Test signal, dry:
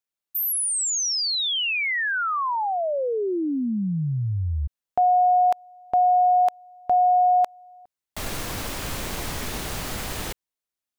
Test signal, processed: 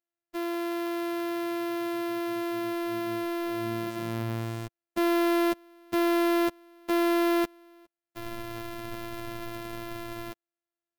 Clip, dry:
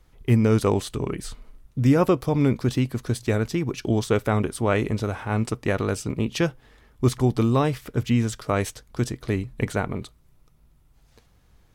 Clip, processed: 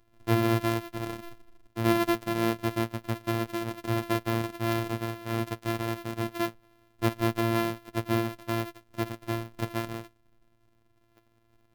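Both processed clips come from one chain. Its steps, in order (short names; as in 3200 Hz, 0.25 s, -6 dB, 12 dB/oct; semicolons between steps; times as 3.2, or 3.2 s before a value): sample sorter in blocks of 128 samples; robotiser 114 Hz; gain -6 dB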